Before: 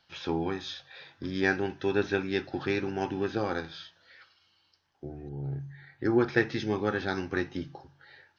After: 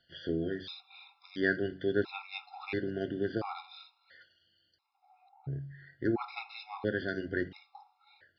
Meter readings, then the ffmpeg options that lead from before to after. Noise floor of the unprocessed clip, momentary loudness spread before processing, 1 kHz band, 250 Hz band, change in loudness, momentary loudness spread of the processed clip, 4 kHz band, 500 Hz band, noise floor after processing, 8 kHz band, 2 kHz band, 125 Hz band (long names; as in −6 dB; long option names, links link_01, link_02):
−69 dBFS, 16 LU, −7.0 dB, −5.0 dB, −4.5 dB, 16 LU, −5.5 dB, −4.5 dB, −75 dBFS, can't be measured, −4.5 dB, −5.0 dB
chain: -af "aresample=11025,aresample=44100,bandreject=frequency=93.29:width_type=h:width=4,bandreject=frequency=186.58:width_type=h:width=4,bandreject=frequency=279.87:width_type=h:width=4,bandreject=frequency=373.16:width_type=h:width=4,bandreject=frequency=466.45:width_type=h:width=4,bandreject=frequency=559.74:width_type=h:width=4,bandreject=frequency=653.03:width_type=h:width=4,bandreject=frequency=746.32:width_type=h:width=4,bandreject=frequency=839.61:width_type=h:width=4,bandreject=frequency=932.9:width_type=h:width=4,bandreject=frequency=1026.19:width_type=h:width=4,bandreject=frequency=1119.48:width_type=h:width=4,afftfilt=real='re*gt(sin(2*PI*0.73*pts/sr)*(1-2*mod(floor(b*sr/1024/700),2)),0)':imag='im*gt(sin(2*PI*0.73*pts/sr)*(1-2*mod(floor(b*sr/1024/700),2)),0)':win_size=1024:overlap=0.75,volume=-2dB"